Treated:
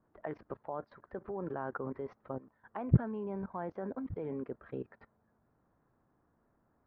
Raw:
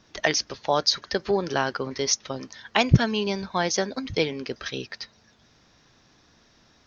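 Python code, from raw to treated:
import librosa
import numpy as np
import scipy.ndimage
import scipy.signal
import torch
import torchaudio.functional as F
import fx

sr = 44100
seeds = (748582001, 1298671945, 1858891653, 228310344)

y = scipy.signal.sosfilt(scipy.signal.butter(4, 1300.0, 'lowpass', fs=sr, output='sos'), x)
y = fx.low_shelf(y, sr, hz=75.0, db=-2.0)
y = fx.level_steps(y, sr, step_db=18)
y = F.gain(torch.from_numpy(y), -2.0).numpy()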